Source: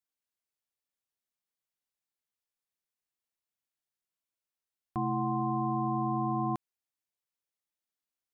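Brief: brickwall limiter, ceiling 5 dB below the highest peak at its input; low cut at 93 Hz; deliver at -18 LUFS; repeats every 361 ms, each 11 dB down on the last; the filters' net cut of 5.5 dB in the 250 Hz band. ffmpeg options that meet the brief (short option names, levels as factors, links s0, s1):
-af "highpass=93,equalizer=f=250:t=o:g=-7.5,alimiter=level_in=1.58:limit=0.0631:level=0:latency=1,volume=0.631,aecho=1:1:361|722|1083:0.282|0.0789|0.0221,volume=8.91"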